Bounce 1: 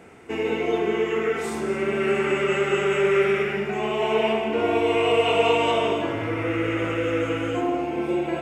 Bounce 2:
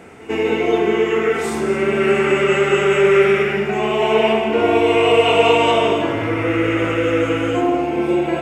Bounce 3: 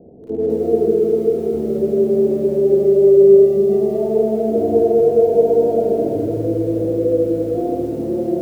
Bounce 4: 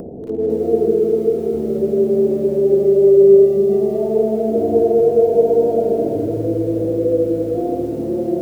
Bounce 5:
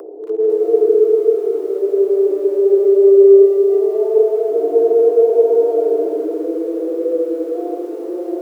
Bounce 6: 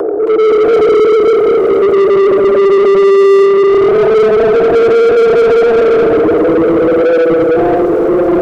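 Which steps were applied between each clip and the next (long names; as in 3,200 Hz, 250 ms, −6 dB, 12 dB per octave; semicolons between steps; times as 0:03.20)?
backwards echo 94 ms −19 dB; level +6.5 dB
Butterworth low-pass 640 Hz 48 dB per octave; on a send at −3.5 dB: convolution reverb RT60 0.80 s, pre-delay 33 ms; on the sum: feedback echo at a low word length 208 ms, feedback 55%, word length 7 bits, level −8 dB; level −1 dB
upward compression, threshold −21 dBFS
Chebyshev high-pass with heavy ripple 300 Hz, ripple 9 dB; level +5.5 dB
mid-hump overdrive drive 33 dB, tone 1,000 Hz, clips at −1 dBFS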